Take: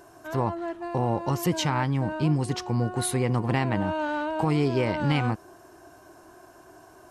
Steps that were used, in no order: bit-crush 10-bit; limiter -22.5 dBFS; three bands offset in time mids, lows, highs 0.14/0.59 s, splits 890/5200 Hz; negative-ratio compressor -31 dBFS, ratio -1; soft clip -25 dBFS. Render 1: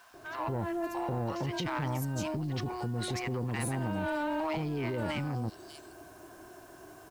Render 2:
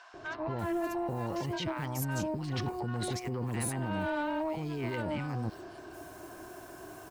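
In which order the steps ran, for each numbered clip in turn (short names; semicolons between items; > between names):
three bands offset in time > limiter > negative-ratio compressor > soft clip > bit-crush; bit-crush > negative-ratio compressor > limiter > three bands offset in time > soft clip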